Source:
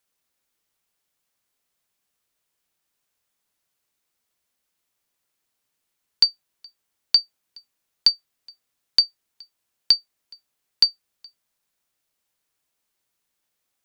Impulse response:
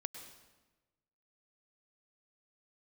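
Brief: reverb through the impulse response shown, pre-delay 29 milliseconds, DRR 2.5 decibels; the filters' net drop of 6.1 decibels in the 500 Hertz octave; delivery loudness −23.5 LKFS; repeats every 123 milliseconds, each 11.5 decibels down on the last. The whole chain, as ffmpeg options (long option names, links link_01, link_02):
-filter_complex "[0:a]equalizer=frequency=500:width_type=o:gain=-8,aecho=1:1:123|246|369:0.266|0.0718|0.0194,asplit=2[link_01][link_02];[1:a]atrim=start_sample=2205,adelay=29[link_03];[link_02][link_03]afir=irnorm=-1:irlink=0,volume=-0.5dB[link_04];[link_01][link_04]amix=inputs=2:normalize=0,volume=-4.5dB"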